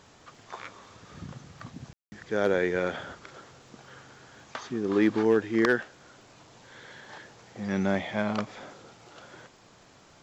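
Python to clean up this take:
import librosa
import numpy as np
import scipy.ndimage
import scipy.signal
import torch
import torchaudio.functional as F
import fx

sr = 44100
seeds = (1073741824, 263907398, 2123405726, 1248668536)

y = fx.fix_declip(x, sr, threshold_db=-13.5)
y = fx.fix_declick_ar(y, sr, threshold=6.5)
y = fx.fix_ambience(y, sr, seeds[0], print_start_s=9.48, print_end_s=9.98, start_s=1.93, end_s=2.12)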